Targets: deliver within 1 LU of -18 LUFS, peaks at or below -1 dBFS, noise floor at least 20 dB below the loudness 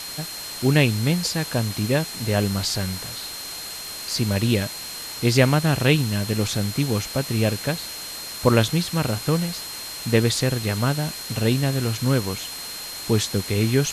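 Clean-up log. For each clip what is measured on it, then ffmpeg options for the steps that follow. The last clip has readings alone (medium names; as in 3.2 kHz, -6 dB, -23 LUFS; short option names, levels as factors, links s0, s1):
steady tone 4.2 kHz; tone level -35 dBFS; noise floor -34 dBFS; noise floor target -43 dBFS; loudness -23.0 LUFS; peak level -4.0 dBFS; loudness target -18.0 LUFS
-> -af "bandreject=f=4200:w=30"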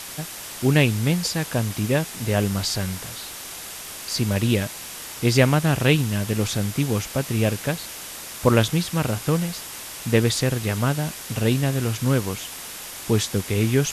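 steady tone not found; noise floor -36 dBFS; noise floor target -44 dBFS
-> -af "afftdn=nr=8:nf=-36"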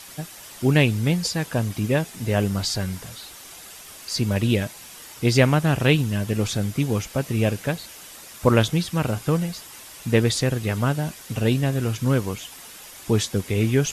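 noise floor -43 dBFS; loudness -23.0 LUFS; peak level -4.0 dBFS; loudness target -18.0 LUFS
-> -af "volume=1.78,alimiter=limit=0.891:level=0:latency=1"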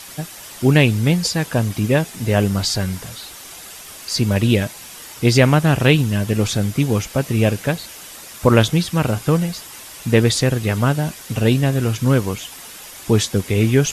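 loudness -18.0 LUFS; peak level -1.0 dBFS; noise floor -38 dBFS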